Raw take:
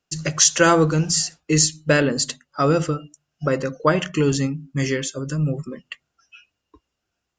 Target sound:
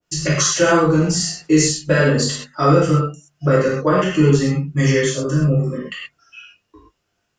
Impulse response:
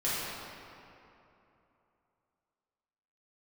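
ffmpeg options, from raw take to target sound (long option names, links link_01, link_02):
-filter_complex "[0:a]acompressor=threshold=-18dB:ratio=6[link_01];[1:a]atrim=start_sample=2205,atrim=end_sample=6174[link_02];[link_01][link_02]afir=irnorm=-1:irlink=0,adynamicequalizer=threshold=0.0178:dfrequency=1600:dqfactor=0.7:tfrequency=1600:tqfactor=0.7:attack=5:release=100:ratio=0.375:range=3:mode=cutabove:tftype=highshelf,volume=1.5dB"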